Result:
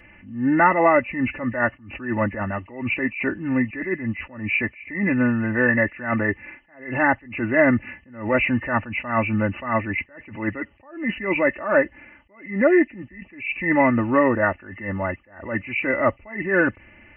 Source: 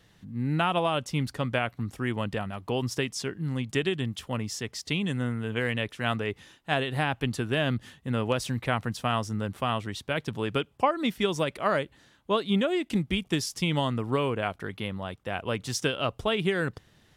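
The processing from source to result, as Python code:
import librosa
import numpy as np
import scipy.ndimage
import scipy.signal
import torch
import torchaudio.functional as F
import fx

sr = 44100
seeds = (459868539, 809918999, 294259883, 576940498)

y = fx.freq_compress(x, sr, knee_hz=1700.0, ratio=4.0)
y = y + 0.83 * np.pad(y, (int(3.4 * sr / 1000.0), 0))[:len(y)]
y = fx.attack_slew(y, sr, db_per_s=120.0)
y = y * librosa.db_to_amplitude(8.5)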